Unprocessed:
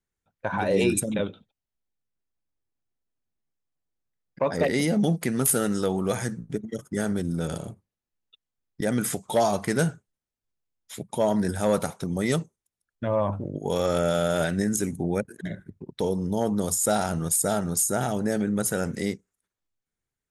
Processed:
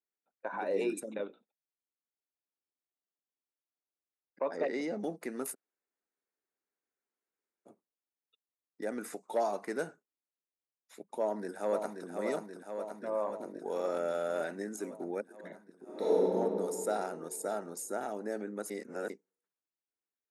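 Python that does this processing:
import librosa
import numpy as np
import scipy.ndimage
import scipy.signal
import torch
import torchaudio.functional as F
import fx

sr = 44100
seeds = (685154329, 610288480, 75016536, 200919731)

y = fx.lowpass(x, sr, hz=7200.0, slope=24, at=(4.55, 4.99))
y = fx.echo_throw(y, sr, start_s=11.18, length_s=0.91, ms=530, feedback_pct=75, wet_db=-5.5)
y = fx.reverb_throw(y, sr, start_s=15.82, length_s=0.4, rt60_s=2.8, drr_db=-10.0)
y = fx.edit(y, sr, fx.room_tone_fill(start_s=5.53, length_s=2.14, crossfade_s=0.04),
    fx.reverse_span(start_s=18.7, length_s=0.4), tone=tone)
y = scipy.signal.sosfilt(scipy.signal.butter(4, 280.0, 'highpass', fs=sr, output='sos'), y)
y = fx.high_shelf(y, sr, hz=2900.0, db=-11.0)
y = fx.notch(y, sr, hz=3200.0, q=5.0)
y = y * 10.0 ** (-8.0 / 20.0)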